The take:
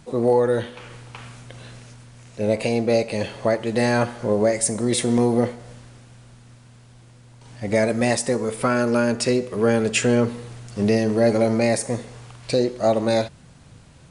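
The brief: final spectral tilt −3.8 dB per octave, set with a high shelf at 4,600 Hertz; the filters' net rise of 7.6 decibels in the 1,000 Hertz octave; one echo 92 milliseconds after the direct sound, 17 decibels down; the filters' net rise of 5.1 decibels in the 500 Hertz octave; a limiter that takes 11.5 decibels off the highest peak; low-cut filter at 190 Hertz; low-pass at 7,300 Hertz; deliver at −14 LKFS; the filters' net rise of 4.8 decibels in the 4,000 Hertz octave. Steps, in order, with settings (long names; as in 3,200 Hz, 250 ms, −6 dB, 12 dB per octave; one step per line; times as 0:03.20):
high-pass filter 190 Hz
low-pass filter 7,300 Hz
parametric band 500 Hz +3.5 dB
parametric band 1,000 Hz +9 dB
parametric band 4,000 Hz +3.5 dB
high-shelf EQ 4,600 Hz +4.5 dB
brickwall limiter −13.5 dBFS
single-tap delay 92 ms −17 dB
level +9.5 dB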